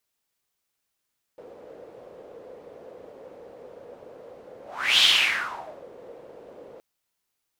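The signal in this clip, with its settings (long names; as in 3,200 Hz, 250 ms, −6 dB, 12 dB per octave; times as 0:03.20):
pass-by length 5.42 s, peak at 0:03.63, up 0.41 s, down 0.89 s, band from 500 Hz, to 3,400 Hz, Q 5.5, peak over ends 27.5 dB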